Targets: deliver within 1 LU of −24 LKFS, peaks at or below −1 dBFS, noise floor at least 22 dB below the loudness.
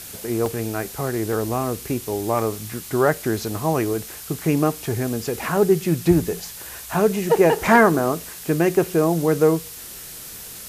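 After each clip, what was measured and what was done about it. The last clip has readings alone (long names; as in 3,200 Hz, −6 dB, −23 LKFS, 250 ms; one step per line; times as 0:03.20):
number of dropouts 6; longest dropout 1.4 ms; background noise floor −37 dBFS; target noise floor −43 dBFS; integrated loudness −21.0 LKFS; sample peak −3.5 dBFS; target loudness −24.0 LKFS
→ repair the gap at 0:00.46/0:01.33/0:02.39/0:03.58/0:05.57/0:07.59, 1.4 ms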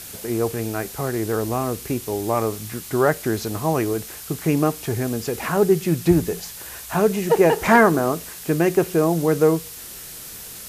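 number of dropouts 0; background noise floor −37 dBFS; target noise floor −43 dBFS
→ broadband denoise 6 dB, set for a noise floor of −37 dBFS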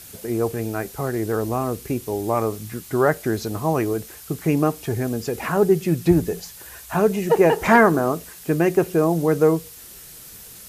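background noise floor −42 dBFS; target noise floor −43 dBFS
→ broadband denoise 6 dB, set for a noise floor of −42 dBFS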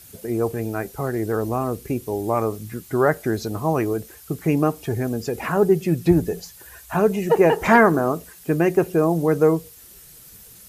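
background noise floor −46 dBFS; integrated loudness −21.5 LKFS; sample peak −3.5 dBFS; target loudness −24.0 LKFS
→ level −2.5 dB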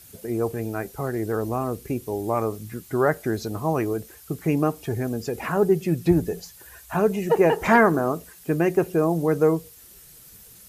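integrated loudness −24.0 LKFS; sample peak −6.0 dBFS; background noise floor −48 dBFS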